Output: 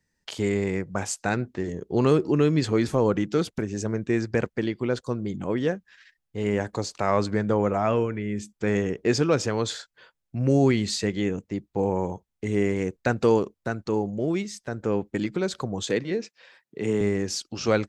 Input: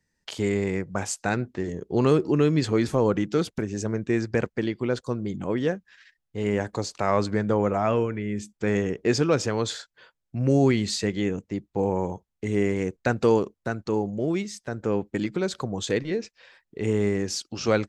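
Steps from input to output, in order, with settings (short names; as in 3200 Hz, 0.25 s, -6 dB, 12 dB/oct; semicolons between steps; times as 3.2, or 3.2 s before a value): 15.83–17.01 HPF 120 Hz 24 dB/oct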